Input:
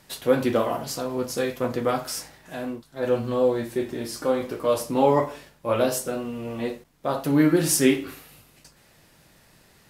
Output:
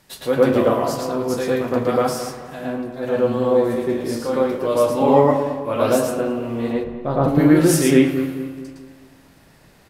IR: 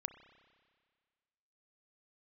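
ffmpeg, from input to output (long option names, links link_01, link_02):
-filter_complex "[0:a]asplit=3[link_01][link_02][link_03];[link_01]afade=type=out:start_time=6.72:duration=0.02[link_04];[link_02]aemphasis=mode=reproduction:type=riaa,afade=type=in:start_time=6.72:duration=0.02,afade=type=out:start_time=7.27:duration=0.02[link_05];[link_03]afade=type=in:start_time=7.27:duration=0.02[link_06];[link_04][link_05][link_06]amix=inputs=3:normalize=0,asplit=2[link_07][link_08];[link_08]adelay=218,lowpass=frequency=1600:poles=1,volume=-11dB,asplit=2[link_09][link_10];[link_10]adelay=218,lowpass=frequency=1600:poles=1,volume=0.45,asplit=2[link_11][link_12];[link_12]adelay=218,lowpass=frequency=1600:poles=1,volume=0.45,asplit=2[link_13][link_14];[link_14]adelay=218,lowpass=frequency=1600:poles=1,volume=0.45,asplit=2[link_15][link_16];[link_16]adelay=218,lowpass=frequency=1600:poles=1,volume=0.45[link_17];[link_07][link_09][link_11][link_13][link_15][link_17]amix=inputs=6:normalize=0,asplit=2[link_18][link_19];[1:a]atrim=start_sample=2205,highshelf=frequency=3200:gain=-12,adelay=112[link_20];[link_19][link_20]afir=irnorm=-1:irlink=0,volume=8.5dB[link_21];[link_18][link_21]amix=inputs=2:normalize=0,volume=-1dB"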